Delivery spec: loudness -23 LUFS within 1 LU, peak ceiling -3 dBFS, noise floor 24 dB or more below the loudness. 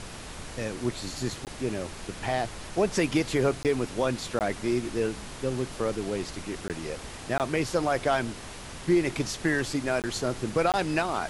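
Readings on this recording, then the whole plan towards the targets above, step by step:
dropouts 7; longest dropout 18 ms; noise floor -41 dBFS; noise floor target -53 dBFS; loudness -29.0 LUFS; peak -12.0 dBFS; loudness target -23.0 LUFS
-> interpolate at 1.45/3.63/4.39/6.68/7.38/10.02/10.72, 18 ms; noise print and reduce 12 dB; gain +6 dB

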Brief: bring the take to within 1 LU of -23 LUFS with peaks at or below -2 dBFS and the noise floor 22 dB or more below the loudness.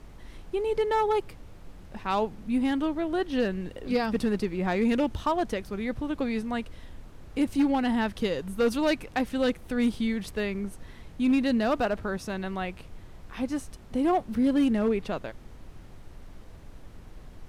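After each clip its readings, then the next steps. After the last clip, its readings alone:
clipped 0.8%; flat tops at -18.0 dBFS; noise floor -47 dBFS; noise floor target -50 dBFS; loudness -28.0 LUFS; peak -18.0 dBFS; loudness target -23.0 LUFS
-> clip repair -18 dBFS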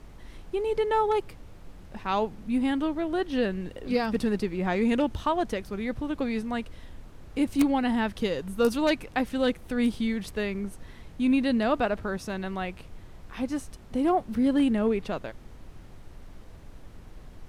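clipped 0.0%; noise floor -47 dBFS; noise floor target -50 dBFS
-> noise print and reduce 6 dB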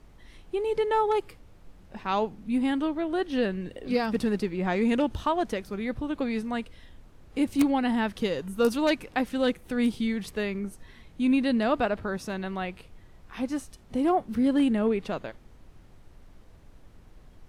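noise floor -53 dBFS; loudness -28.0 LUFS; peak -9.0 dBFS; loudness target -23.0 LUFS
-> gain +5 dB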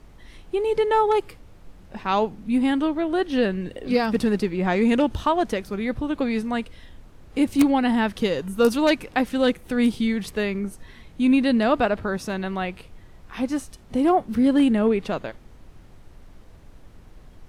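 loudness -23.0 LUFS; peak -4.0 dBFS; noise floor -48 dBFS

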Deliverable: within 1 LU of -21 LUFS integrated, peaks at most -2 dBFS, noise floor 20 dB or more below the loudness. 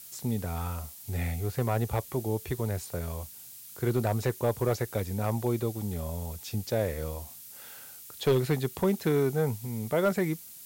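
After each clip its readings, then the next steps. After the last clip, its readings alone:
clipped 0.4%; flat tops at -18.0 dBFS; noise floor -47 dBFS; noise floor target -51 dBFS; loudness -30.5 LUFS; peak -18.0 dBFS; loudness target -21.0 LUFS
-> clip repair -18 dBFS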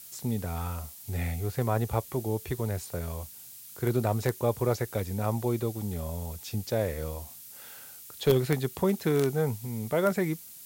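clipped 0.0%; noise floor -47 dBFS; noise floor target -50 dBFS
-> noise print and reduce 6 dB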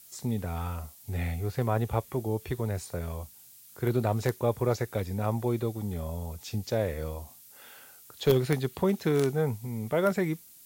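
noise floor -53 dBFS; loudness -30.5 LUFS; peak -9.0 dBFS; loudness target -21.0 LUFS
-> gain +9.5 dB; limiter -2 dBFS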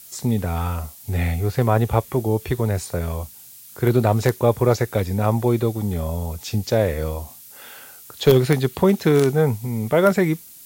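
loudness -21.0 LUFS; peak -2.0 dBFS; noise floor -44 dBFS

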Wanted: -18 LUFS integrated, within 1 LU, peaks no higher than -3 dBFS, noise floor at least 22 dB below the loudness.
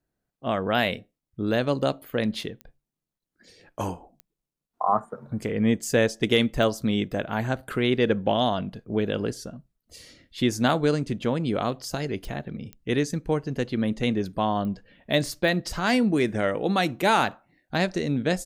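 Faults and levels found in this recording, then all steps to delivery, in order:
clicks 7; loudness -26.0 LUFS; peak -7.5 dBFS; loudness target -18.0 LUFS
-> de-click; gain +8 dB; limiter -3 dBFS

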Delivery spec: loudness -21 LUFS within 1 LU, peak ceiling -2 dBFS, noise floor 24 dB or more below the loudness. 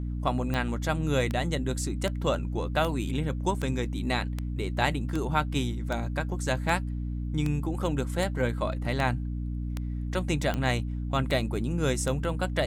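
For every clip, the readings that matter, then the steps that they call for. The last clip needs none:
clicks 16; hum 60 Hz; harmonics up to 300 Hz; hum level -29 dBFS; loudness -29.5 LUFS; peak -8.5 dBFS; loudness target -21.0 LUFS
-> de-click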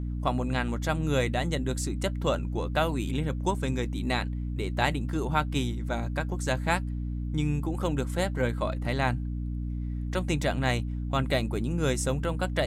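clicks 0; hum 60 Hz; harmonics up to 300 Hz; hum level -29 dBFS
-> de-hum 60 Hz, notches 5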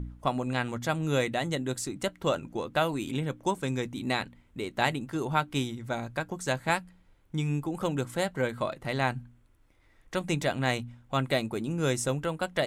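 hum none; loudness -31.0 LUFS; peak -8.5 dBFS; loudness target -21.0 LUFS
-> gain +10 dB; limiter -2 dBFS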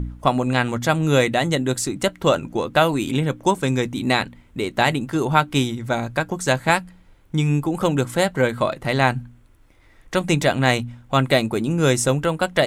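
loudness -21.0 LUFS; peak -2.0 dBFS; noise floor -52 dBFS

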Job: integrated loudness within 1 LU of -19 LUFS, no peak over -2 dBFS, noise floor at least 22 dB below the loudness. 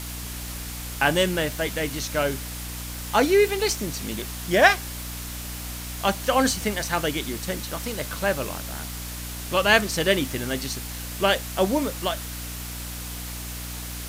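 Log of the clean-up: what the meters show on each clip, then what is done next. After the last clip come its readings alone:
hum 60 Hz; harmonics up to 300 Hz; hum level -34 dBFS; noise floor -34 dBFS; noise floor target -47 dBFS; loudness -25.0 LUFS; peak -2.5 dBFS; loudness target -19.0 LUFS
-> notches 60/120/180/240/300 Hz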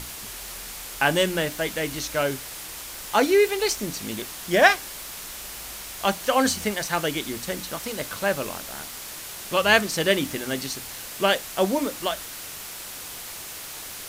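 hum none; noise floor -38 dBFS; noise floor target -48 dBFS
-> denoiser 10 dB, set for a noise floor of -38 dBFS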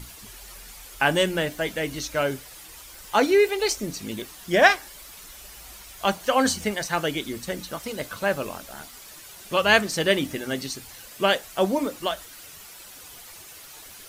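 noise floor -45 dBFS; noise floor target -46 dBFS
-> denoiser 6 dB, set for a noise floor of -45 dBFS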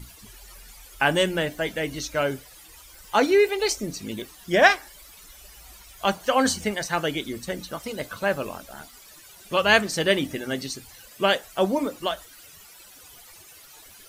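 noise floor -49 dBFS; loudness -24.0 LUFS; peak -2.5 dBFS; loudness target -19.0 LUFS
-> gain +5 dB; limiter -2 dBFS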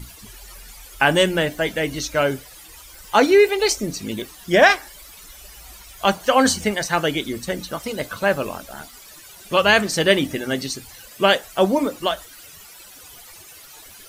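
loudness -19.5 LUFS; peak -2.0 dBFS; noise floor -44 dBFS

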